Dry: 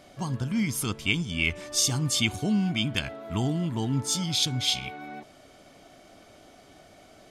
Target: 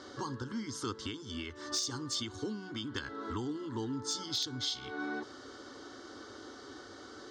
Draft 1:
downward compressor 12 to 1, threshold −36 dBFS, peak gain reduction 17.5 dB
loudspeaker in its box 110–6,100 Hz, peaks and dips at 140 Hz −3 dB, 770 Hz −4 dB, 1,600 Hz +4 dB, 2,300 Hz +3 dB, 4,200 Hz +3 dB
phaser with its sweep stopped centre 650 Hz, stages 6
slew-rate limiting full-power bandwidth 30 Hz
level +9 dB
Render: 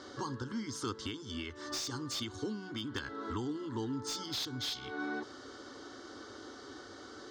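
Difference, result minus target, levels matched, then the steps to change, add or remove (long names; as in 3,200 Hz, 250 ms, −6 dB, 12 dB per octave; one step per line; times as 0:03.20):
slew-rate limiting: distortion +15 dB
change: slew-rate limiting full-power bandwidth 81.5 Hz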